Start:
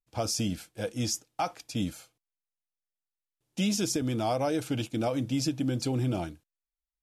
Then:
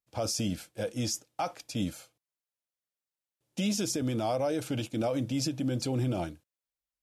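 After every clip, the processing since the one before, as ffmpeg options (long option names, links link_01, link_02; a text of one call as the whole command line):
ffmpeg -i in.wav -af "highpass=58,equalizer=frequency=560:width_type=o:width=0.28:gain=6,alimiter=limit=-21.5dB:level=0:latency=1:release=48" out.wav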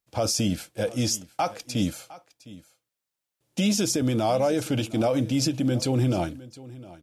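ffmpeg -i in.wav -af "aecho=1:1:709:0.112,volume=6.5dB" out.wav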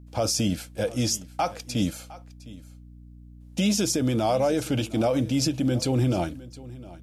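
ffmpeg -i in.wav -af "aeval=exprs='val(0)+0.00562*(sin(2*PI*60*n/s)+sin(2*PI*2*60*n/s)/2+sin(2*PI*3*60*n/s)/3+sin(2*PI*4*60*n/s)/4+sin(2*PI*5*60*n/s)/5)':channel_layout=same" out.wav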